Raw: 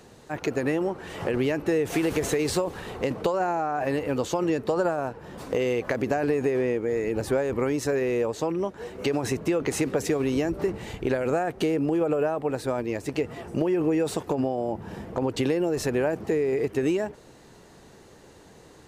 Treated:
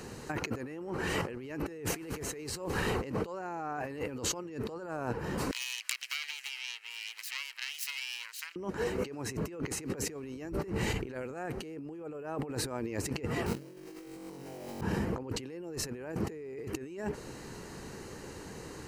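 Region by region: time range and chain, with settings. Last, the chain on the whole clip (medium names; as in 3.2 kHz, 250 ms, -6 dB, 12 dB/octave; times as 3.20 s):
5.51–8.56 s: self-modulated delay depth 0.43 ms + ladder high-pass 2.1 kHz, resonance 30%
13.46–14.81 s: treble shelf 2.6 kHz -11 dB + companded quantiser 4-bit + flutter echo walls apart 3.7 m, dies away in 1.4 s
whole clip: peaking EQ 660 Hz -6.5 dB 0.56 oct; band-stop 3.5 kHz, Q 5.8; compressor with a negative ratio -37 dBFS, ratio -1; trim -1.5 dB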